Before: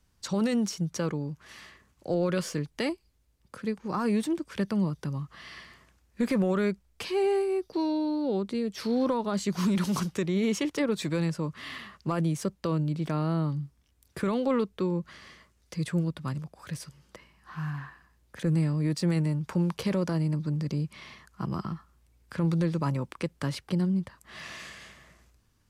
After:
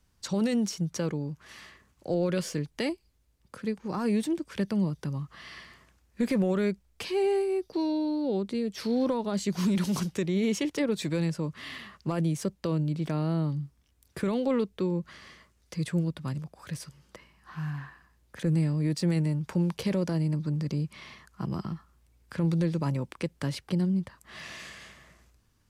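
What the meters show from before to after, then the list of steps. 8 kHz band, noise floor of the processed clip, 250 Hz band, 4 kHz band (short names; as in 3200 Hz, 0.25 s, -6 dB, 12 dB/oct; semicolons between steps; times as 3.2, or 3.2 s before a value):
0.0 dB, -68 dBFS, 0.0 dB, 0.0 dB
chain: dynamic EQ 1200 Hz, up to -6 dB, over -48 dBFS, Q 1.9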